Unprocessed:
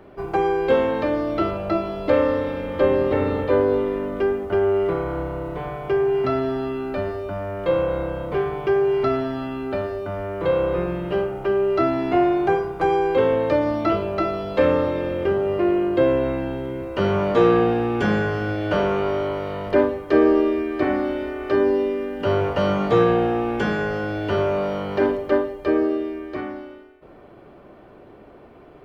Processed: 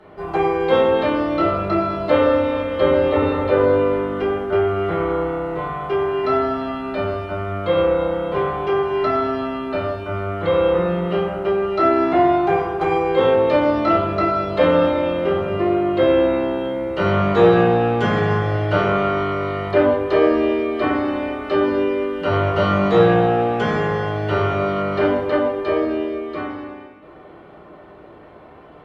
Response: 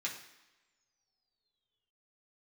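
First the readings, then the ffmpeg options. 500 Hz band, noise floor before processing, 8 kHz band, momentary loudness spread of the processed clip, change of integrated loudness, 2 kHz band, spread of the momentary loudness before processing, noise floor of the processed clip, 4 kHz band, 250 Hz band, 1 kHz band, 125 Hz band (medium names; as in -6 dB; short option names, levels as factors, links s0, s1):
+2.5 dB, -46 dBFS, no reading, 8 LU, +3.0 dB, +3.5 dB, 8 LU, -43 dBFS, +5.0 dB, +2.0 dB, +5.0 dB, +4.5 dB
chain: -filter_complex "[1:a]atrim=start_sample=2205,asetrate=23373,aresample=44100[s0];[0:a][s0]afir=irnorm=-1:irlink=0,volume=0.794"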